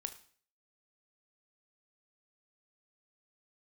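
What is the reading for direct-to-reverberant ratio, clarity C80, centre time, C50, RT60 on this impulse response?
8.5 dB, 17.5 dB, 7 ms, 13.0 dB, 0.50 s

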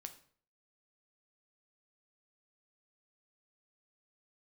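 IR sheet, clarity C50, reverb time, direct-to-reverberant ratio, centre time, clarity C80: 13.0 dB, 0.50 s, 7.0 dB, 8 ms, 17.0 dB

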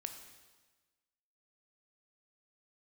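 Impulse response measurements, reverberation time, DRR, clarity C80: 1.3 s, 6.0 dB, 9.5 dB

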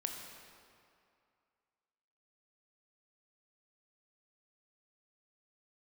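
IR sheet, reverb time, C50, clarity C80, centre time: 2.4 s, 3.5 dB, 4.5 dB, 71 ms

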